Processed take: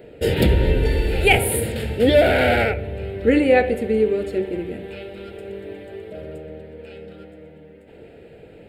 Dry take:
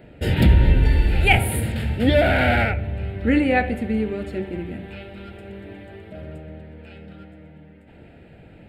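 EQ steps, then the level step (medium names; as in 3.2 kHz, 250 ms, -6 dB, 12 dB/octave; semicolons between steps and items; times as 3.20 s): peaking EQ 450 Hz +15 dB 0.79 oct; treble shelf 2.7 kHz +10.5 dB; -4.0 dB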